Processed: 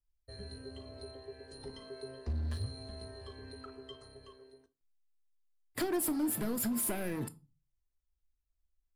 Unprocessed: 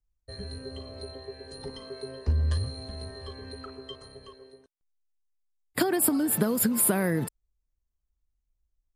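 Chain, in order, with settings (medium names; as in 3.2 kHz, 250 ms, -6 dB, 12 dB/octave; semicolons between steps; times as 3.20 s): hard clipper -24 dBFS, distortion -10 dB; reverberation RT60 0.30 s, pre-delay 3 ms, DRR 9 dB; trim -7 dB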